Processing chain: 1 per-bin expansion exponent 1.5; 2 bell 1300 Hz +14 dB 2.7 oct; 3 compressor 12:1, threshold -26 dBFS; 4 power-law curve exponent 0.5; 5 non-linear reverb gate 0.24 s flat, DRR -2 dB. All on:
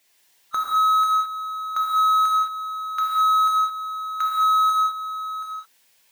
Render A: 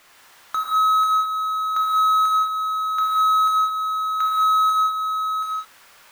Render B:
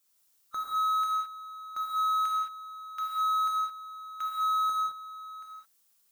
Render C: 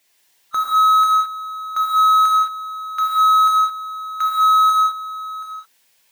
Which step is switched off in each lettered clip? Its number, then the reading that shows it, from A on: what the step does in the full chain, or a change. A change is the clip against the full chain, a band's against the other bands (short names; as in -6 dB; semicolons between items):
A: 1, momentary loudness spread change -5 LU; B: 2, momentary loudness spread change +4 LU; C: 3, mean gain reduction 3.5 dB